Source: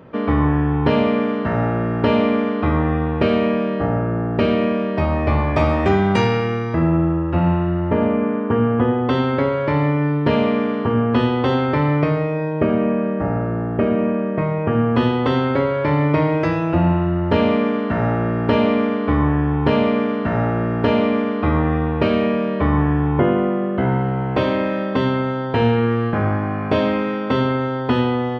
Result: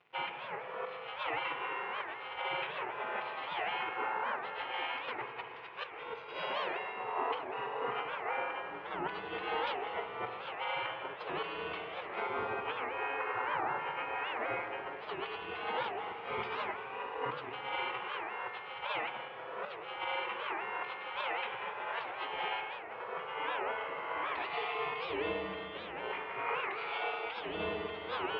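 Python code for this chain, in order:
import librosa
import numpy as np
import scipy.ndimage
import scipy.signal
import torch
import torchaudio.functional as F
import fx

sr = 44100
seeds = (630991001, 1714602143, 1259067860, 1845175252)

y = fx.octave_divider(x, sr, octaves=1, level_db=2.0)
y = fx.spec_gate(y, sr, threshold_db=-25, keep='weak')
y = fx.peak_eq(y, sr, hz=380.0, db=3.0, octaves=0.4)
y = fx.notch(y, sr, hz=600.0, q=12.0)
y = fx.over_compress(y, sr, threshold_db=-41.0, ratio=-0.5)
y = np.sign(y) * np.maximum(np.abs(y) - 10.0 ** (-56.0 / 20.0), 0.0)
y = fx.cabinet(y, sr, low_hz=120.0, low_slope=12, high_hz=2900.0, hz=(120.0, 240.0, 450.0, 940.0, 1700.0), db=(10, -4, 10, 4, -8))
y = y + 10.0 ** (-13.5 / 20.0) * np.pad(y, (int(192 * sr / 1000.0), 0))[:len(y)]
y = fx.rev_spring(y, sr, rt60_s=2.6, pass_ms=(37, 41), chirp_ms=70, drr_db=3.5)
y = fx.record_warp(y, sr, rpm=78.0, depth_cents=250.0)
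y = y * librosa.db_to_amplitude(3.0)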